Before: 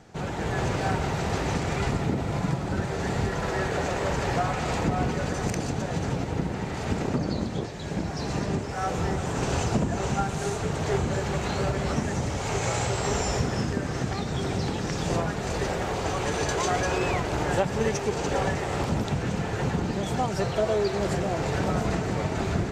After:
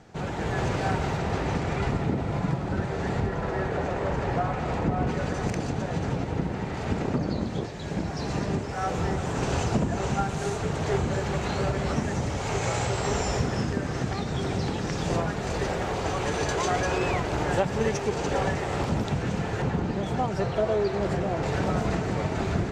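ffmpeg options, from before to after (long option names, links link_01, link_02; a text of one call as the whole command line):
ffmpeg -i in.wav -af "asetnsamples=nb_out_samples=441:pad=0,asendcmd='1.17 lowpass f 2900;3.2 lowpass f 1500;5.07 lowpass f 3800;7.47 lowpass f 6900;19.62 lowpass f 2600;21.43 lowpass f 5900',lowpass=frequency=6400:poles=1" out.wav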